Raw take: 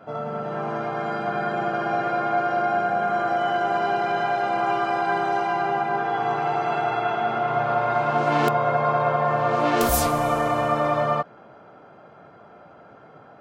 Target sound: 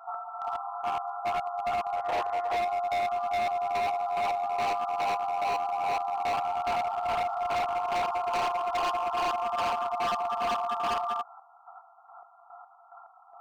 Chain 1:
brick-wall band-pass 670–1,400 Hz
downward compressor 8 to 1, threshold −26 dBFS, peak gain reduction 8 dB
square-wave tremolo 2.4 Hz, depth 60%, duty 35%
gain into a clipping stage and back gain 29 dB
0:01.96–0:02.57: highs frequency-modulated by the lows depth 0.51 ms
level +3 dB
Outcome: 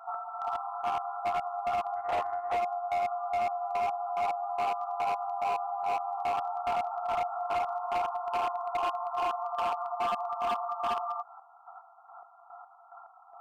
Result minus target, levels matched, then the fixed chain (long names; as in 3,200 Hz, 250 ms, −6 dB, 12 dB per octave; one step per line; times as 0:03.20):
downward compressor: peak gain reduction +8 dB
brick-wall band-pass 670–1,400 Hz
square-wave tremolo 2.4 Hz, depth 60%, duty 35%
gain into a clipping stage and back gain 29 dB
0:01.96–0:02.57: highs frequency-modulated by the lows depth 0.51 ms
level +3 dB